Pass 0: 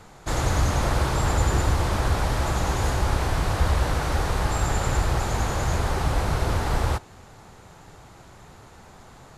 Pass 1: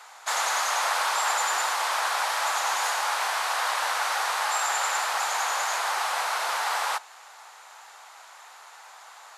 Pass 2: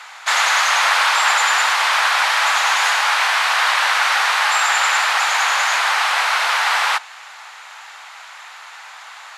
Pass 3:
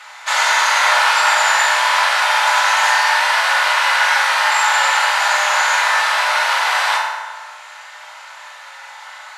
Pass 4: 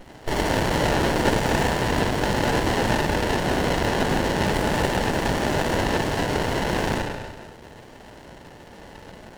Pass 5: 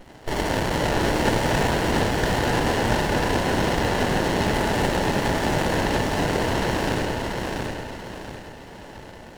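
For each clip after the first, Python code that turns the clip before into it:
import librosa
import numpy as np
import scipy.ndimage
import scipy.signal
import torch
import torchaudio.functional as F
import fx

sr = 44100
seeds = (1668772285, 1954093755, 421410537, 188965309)

y1 = scipy.signal.sosfilt(scipy.signal.butter(4, 800.0, 'highpass', fs=sr, output='sos'), x)
y1 = y1 * librosa.db_to_amplitude(5.0)
y2 = fx.peak_eq(y1, sr, hz=2400.0, db=14.5, octaves=2.7)
y3 = fx.rev_fdn(y2, sr, rt60_s=1.4, lf_ratio=1.1, hf_ratio=0.6, size_ms=10.0, drr_db=-4.0)
y3 = y3 * librosa.db_to_amplitude(-3.5)
y4 = fx.running_max(y3, sr, window=33)
y4 = y4 * librosa.db_to_amplitude(-2.5)
y5 = fx.echo_feedback(y4, sr, ms=686, feedback_pct=37, wet_db=-3.5)
y5 = y5 * librosa.db_to_amplitude(-1.5)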